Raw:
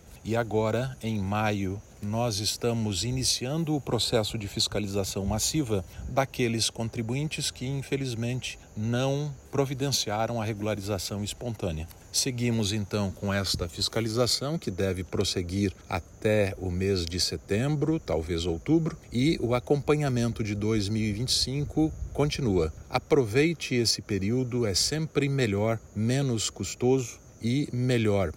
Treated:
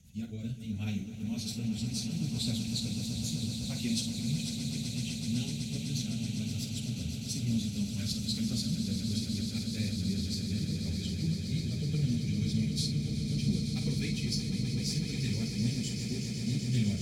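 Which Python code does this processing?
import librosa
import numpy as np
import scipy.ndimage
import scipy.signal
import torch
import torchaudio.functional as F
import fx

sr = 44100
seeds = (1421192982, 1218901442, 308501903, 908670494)

p1 = fx.curve_eq(x, sr, hz=(230.0, 330.0, 1200.0, 2900.0), db=(0, -21, -26, -6))
p2 = fx.stretch_vocoder_free(p1, sr, factor=0.6)
p3 = fx.rotary(p2, sr, hz=0.7)
p4 = 10.0 ** (-27.0 / 20.0) * np.tanh(p3 / 10.0 ** (-27.0 / 20.0))
p5 = p3 + F.gain(torch.from_numpy(p4), -6.5).numpy()
p6 = fx.low_shelf(p5, sr, hz=100.0, db=-10.5)
p7 = fx.doubler(p6, sr, ms=49.0, db=-8.5)
y = p7 + fx.echo_swell(p7, sr, ms=126, loudest=8, wet_db=-11.0, dry=0)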